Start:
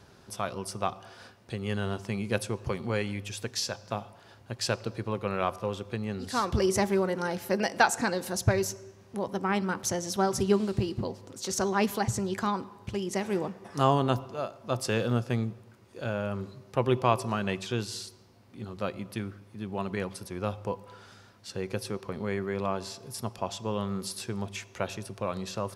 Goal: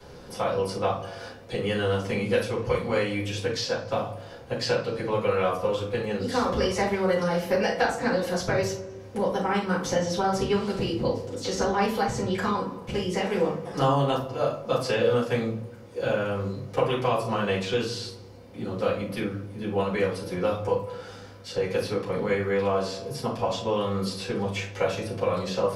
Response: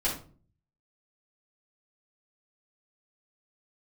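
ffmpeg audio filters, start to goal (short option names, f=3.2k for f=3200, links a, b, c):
-filter_complex "[0:a]equalizer=f=490:t=o:w=0.29:g=11.5,acrossover=split=130|830|5000[a][b][c][d];[a]acompressor=threshold=-45dB:ratio=4[e];[b]acompressor=threshold=-35dB:ratio=4[f];[c]acompressor=threshold=-34dB:ratio=4[g];[d]acompressor=threshold=-54dB:ratio=4[h];[e][f][g][h]amix=inputs=4:normalize=0[i];[1:a]atrim=start_sample=2205[j];[i][j]afir=irnorm=-1:irlink=0"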